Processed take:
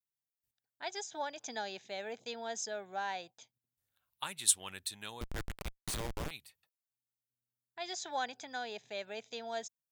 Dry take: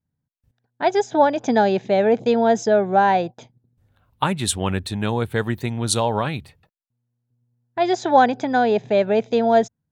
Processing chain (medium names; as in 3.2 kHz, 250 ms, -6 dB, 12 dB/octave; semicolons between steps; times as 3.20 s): pre-emphasis filter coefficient 0.97; 5.21–6.31 s: Schmitt trigger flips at -35.5 dBFS; trim -3.5 dB